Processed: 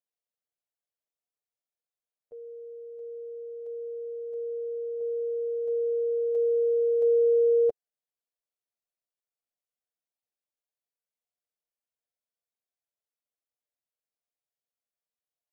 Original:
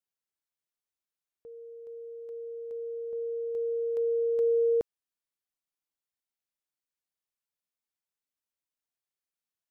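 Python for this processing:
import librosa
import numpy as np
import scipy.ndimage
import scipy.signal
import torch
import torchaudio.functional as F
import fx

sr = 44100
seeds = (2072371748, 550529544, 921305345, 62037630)

y = fx.stretch_grains(x, sr, factor=1.6, grain_ms=45.0)
y = fx.band_shelf(y, sr, hz=570.0, db=10.0, octaves=1.0)
y = y * librosa.db_to_amplitude(-6.5)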